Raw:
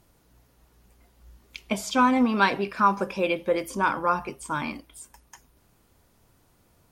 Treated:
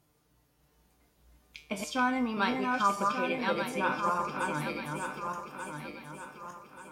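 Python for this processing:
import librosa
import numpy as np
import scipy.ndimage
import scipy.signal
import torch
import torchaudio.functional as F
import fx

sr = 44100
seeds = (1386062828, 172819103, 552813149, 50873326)

y = fx.reverse_delay_fb(x, sr, ms=592, feedback_pct=62, wet_db=-3.0)
y = scipy.signal.sosfilt(scipy.signal.butter(2, 54.0, 'highpass', fs=sr, output='sos'), y)
y = fx.comb_fb(y, sr, f0_hz=150.0, decay_s=0.38, harmonics='all', damping=0.0, mix_pct=80)
y = F.gain(torch.from_numpy(y), 2.5).numpy()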